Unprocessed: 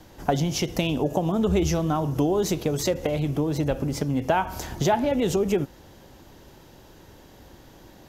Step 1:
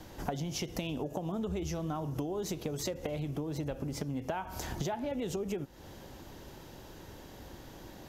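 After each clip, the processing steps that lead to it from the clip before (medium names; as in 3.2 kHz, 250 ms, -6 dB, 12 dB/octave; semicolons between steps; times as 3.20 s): compression 5:1, threshold -34 dBFS, peak gain reduction 15.5 dB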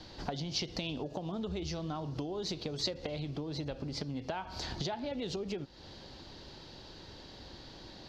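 resonant low-pass 4.4 kHz, resonance Q 5.2; trim -2.5 dB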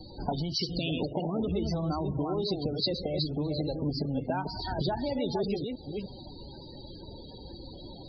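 chunks repeated in reverse 303 ms, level -4 dB; loudest bins only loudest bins 32; trim +6 dB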